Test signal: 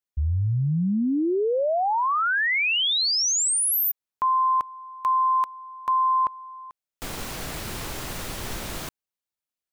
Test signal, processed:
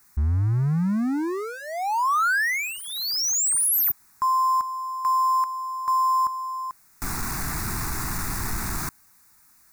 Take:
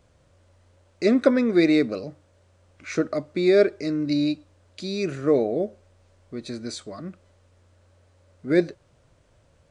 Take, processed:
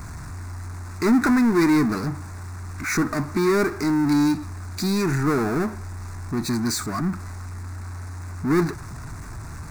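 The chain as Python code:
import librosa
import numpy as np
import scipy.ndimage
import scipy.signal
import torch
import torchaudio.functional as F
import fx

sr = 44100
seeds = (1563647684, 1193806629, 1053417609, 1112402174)

y = fx.power_curve(x, sr, exponent=0.5)
y = fx.fixed_phaser(y, sr, hz=1300.0, stages=4)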